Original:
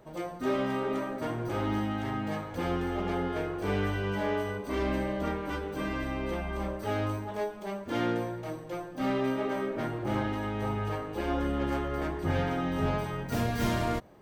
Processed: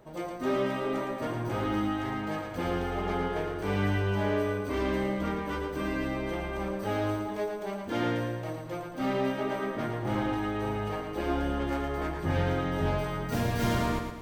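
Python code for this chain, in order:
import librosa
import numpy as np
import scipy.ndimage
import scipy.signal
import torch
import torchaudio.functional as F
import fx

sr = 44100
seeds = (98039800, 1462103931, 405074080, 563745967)

y = fx.echo_feedback(x, sr, ms=112, feedback_pct=47, wet_db=-6.0)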